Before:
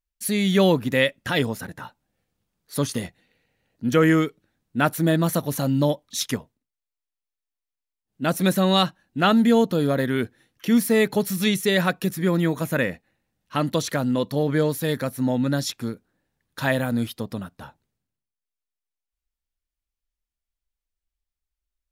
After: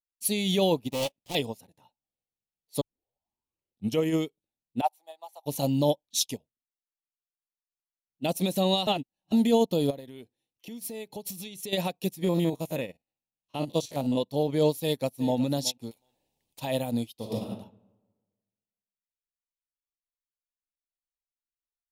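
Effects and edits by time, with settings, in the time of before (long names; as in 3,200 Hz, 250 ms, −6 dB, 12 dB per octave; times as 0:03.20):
0:00.90–0:01.35: gap after every zero crossing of 0.3 ms
0:02.81: tape start 1.18 s
0:04.81–0:05.46: four-pole ladder high-pass 750 Hz, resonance 75%
0:06.18–0:08.25: auto-filter notch saw down 2.1 Hz → 0.55 Hz 310–2,400 Hz
0:08.87–0:09.32: reverse
0:09.90–0:11.73: downward compressor 16 to 1, threshold −25 dBFS
0:12.24–0:14.20: spectrum averaged block by block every 50 ms
0:14.74–0:15.40: delay throw 370 ms, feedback 10%, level −15 dB
0:15.91–0:16.60: every bin compressed towards the loudest bin 4 to 1
0:17.15–0:17.55: thrown reverb, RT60 1.4 s, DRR −5 dB
whole clip: brickwall limiter −15.5 dBFS; drawn EQ curve 200 Hz 0 dB, 860 Hz +6 dB, 1,500 Hz −17 dB, 2,600 Hz +6 dB; expander for the loud parts 2.5 to 1, over −35 dBFS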